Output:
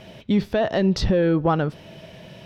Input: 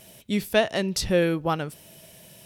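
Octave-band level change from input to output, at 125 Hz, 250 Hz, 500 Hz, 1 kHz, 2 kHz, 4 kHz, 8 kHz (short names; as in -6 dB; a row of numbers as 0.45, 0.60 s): +7.0, +6.0, +2.5, +3.5, -2.5, -2.5, -9.0 dB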